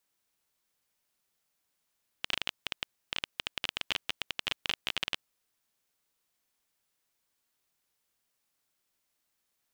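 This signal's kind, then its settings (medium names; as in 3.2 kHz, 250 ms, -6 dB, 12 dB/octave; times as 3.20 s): random clicks 18 per s -12.5 dBFS 2.94 s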